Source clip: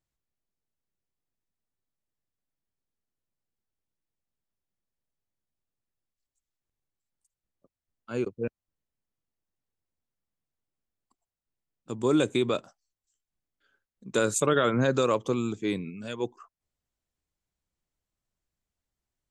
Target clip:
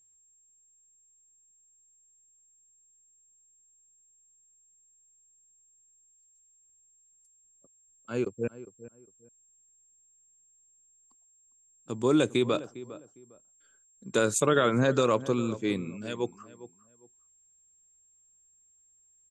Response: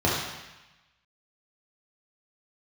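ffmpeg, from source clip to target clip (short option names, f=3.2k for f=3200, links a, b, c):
-filter_complex "[0:a]aeval=exprs='val(0)+0.000891*sin(2*PI*7500*n/s)':c=same,asplit=2[a][b];[b]adelay=405,lowpass=f=1.4k:p=1,volume=-15.5dB,asplit=2[c][d];[d]adelay=405,lowpass=f=1.4k:p=1,volume=0.24[e];[a][c][e]amix=inputs=3:normalize=0"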